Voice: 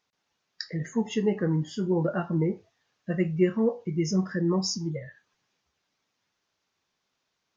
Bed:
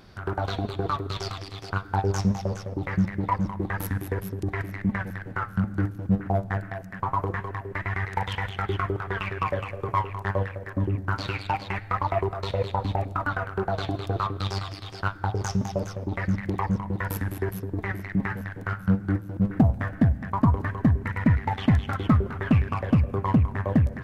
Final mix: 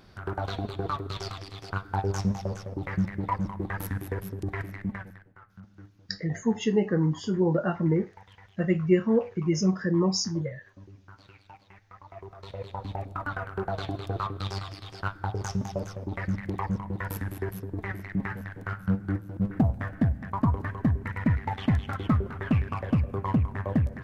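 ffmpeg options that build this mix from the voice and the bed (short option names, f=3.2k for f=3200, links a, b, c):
-filter_complex "[0:a]adelay=5500,volume=1.5dB[a];[1:a]volume=16dB,afade=t=out:st=4.64:d=0.66:silence=0.1,afade=t=in:st=12.06:d=1.48:silence=0.105925[b];[a][b]amix=inputs=2:normalize=0"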